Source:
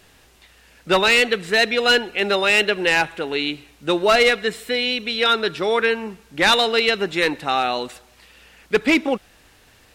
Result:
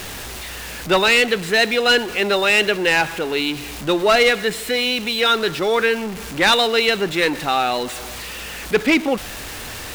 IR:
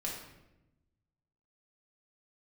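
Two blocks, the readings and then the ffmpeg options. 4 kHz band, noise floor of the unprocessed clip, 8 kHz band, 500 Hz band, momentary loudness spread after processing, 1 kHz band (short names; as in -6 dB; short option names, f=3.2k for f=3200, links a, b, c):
+1.5 dB, -53 dBFS, +4.5 dB, +1.5 dB, 16 LU, +1.0 dB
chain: -af "aeval=exprs='val(0)+0.5*0.0473*sgn(val(0))':c=same"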